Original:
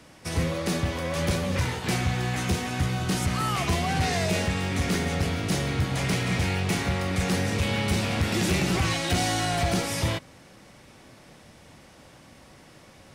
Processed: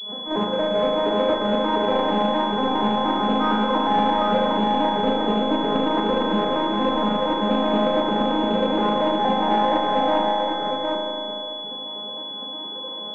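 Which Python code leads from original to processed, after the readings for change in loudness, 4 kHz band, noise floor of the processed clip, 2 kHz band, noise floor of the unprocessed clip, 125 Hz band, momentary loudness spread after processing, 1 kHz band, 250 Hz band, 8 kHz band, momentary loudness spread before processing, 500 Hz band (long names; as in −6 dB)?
+4.5 dB, +6.5 dB, −33 dBFS, −1.5 dB, −52 dBFS, −10.0 dB, 10 LU, +12.0 dB, +6.5 dB, below −20 dB, 3 LU, +10.5 dB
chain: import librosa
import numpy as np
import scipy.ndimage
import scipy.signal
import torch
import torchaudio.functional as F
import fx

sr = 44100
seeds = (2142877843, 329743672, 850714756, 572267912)

y = fx.vocoder_arp(x, sr, chord='major triad', root=56, every_ms=117)
y = fx.peak_eq(y, sr, hz=790.0, db=10.0, octaves=2.2)
y = fx.rider(y, sr, range_db=10, speed_s=0.5)
y = fx.small_body(y, sr, hz=(480.0, 1000.0), ring_ms=45, db=9)
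y = 10.0 ** (-21.0 / 20.0) * np.tanh(y / 10.0 ** (-21.0 / 20.0))
y = fx.volume_shaper(y, sr, bpm=135, per_beat=2, depth_db=-13, release_ms=83.0, shape='slow start')
y = y + 10.0 ** (-3.5 / 20.0) * np.pad(y, (int(759 * sr / 1000.0), 0))[:len(y)]
y = fx.rev_spring(y, sr, rt60_s=2.4, pass_ms=(37,), chirp_ms=45, drr_db=-1.0)
y = fx.pwm(y, sr, carrier_hz=3400.0)
y = y * 10.0 ** (2.5 / 20.0)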